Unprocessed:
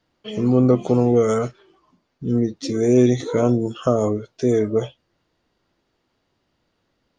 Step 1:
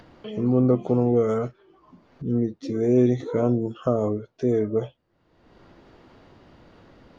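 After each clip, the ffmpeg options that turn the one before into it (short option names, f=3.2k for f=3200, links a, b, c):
-af "lowpass=f=1.4k:p=1,acompressor=mode=upward:threshold=-28dB:ratio=2.5,volume=-3.5dB"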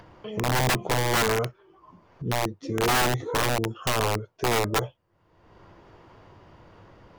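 -af "equalizer=f=100:t=o:w=0.33:g=6,equalizer=f=250:t=o:w=0.33:g=-9,equalizer=f=1k:t=o:w=0.33:g=6,equalizer=f=4k:t=o:w=0.33:g=-6,aeval=exprs='(mod(7.5*val(0)+1,2)-1)/7.5':c=same"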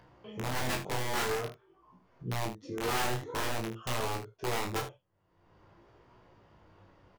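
-filter_complex "[0:a]flanger=delay=16.5:depth=5.2:speed=0.49,asplit=2[a][b];[b]aecho=0:1:32|76:0.501|0.266[c];[a][c]amix=inputs=2:normalize=0,volume=-7dB"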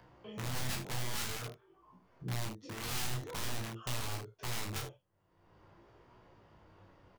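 -filter_complex "[0:a]acrossover=split=230|580|3000[a][b][c][d];[b]aeval=exprs='(mod(112*val(0)+1,2)-1)/112':c=same[e];[c]acompressor=threshold=-45dB:ratio=6[f];[a][e][f][d]amix=inputs=4:normalize=0,volume=-1dB"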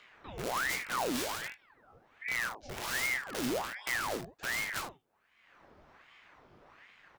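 -af "aeval=exprs='val(0)*sin(2*PI*1200*n/s+1200*0.8/1.3*sin(2*PI*1.3*n/s))':c=same,volume=4.5dB"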